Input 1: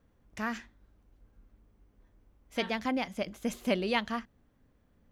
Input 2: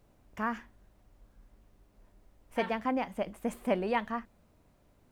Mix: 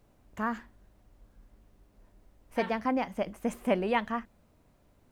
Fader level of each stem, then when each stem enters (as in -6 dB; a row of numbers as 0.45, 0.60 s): -12.0, +0.5 dB; 0.00, 0.00 s